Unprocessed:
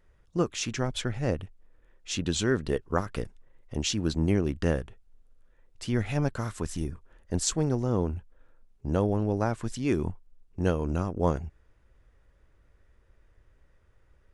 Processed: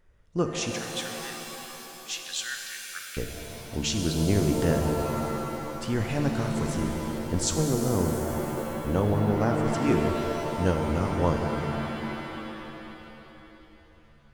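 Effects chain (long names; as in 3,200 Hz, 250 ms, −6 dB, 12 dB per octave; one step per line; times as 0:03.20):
0:00.71–0:03.17: elliptic high-pass filter 1,500 Hz, stop band 40 dB
reverb with rising layers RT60 3.1 s, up +7 semitones, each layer −2 dB, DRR 4 dB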